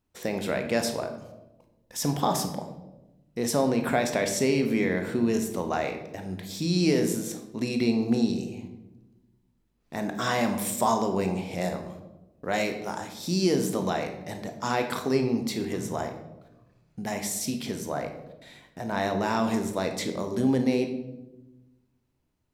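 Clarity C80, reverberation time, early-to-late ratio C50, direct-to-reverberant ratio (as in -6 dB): 11.0 dB, 1.0 s, 8.0 dB, 5.5 dB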